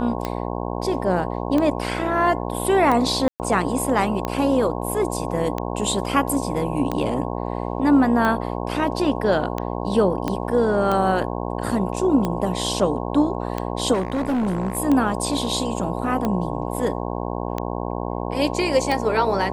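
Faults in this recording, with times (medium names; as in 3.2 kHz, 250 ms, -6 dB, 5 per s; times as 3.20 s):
buzz 60 Hz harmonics 18 -27 dBFS
tick 45 rpm -11 dBFS
3.28–3.40 s: dropout 119 ms
10.28 s: pop -11 dBFS
13.93–14.78 s: clipped -19 dBFS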